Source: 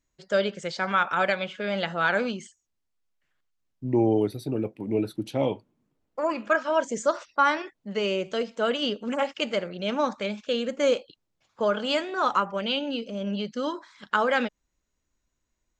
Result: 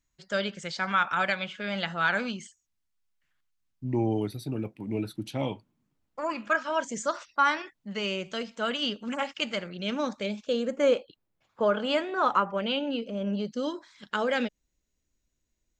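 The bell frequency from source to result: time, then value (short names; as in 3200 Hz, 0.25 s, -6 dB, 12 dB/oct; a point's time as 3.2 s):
bell -8.5 dB 1.4 oct
9.57 s 470 Hz
10.36 s 1400 Hz
10.91 s 5900 Hz
13.18 s 5900 Hz
13.71 s 1100 Hz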